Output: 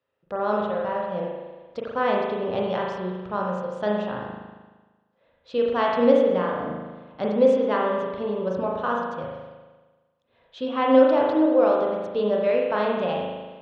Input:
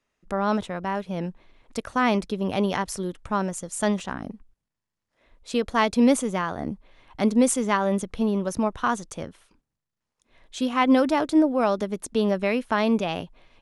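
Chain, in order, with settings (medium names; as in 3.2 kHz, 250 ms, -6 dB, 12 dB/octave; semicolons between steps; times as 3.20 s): cabinet simulation 100–4000 Hz, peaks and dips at 120 Hz +6 dB, 220 Hz -7 dB, 330 Hz -4 dB, 520 Hz +10 dB, 2.2 kHz -7 dB; spring tank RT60 1.3 s, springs 38 ms, chirp 65 ms, DRR -2 dB; trim -4.5 dB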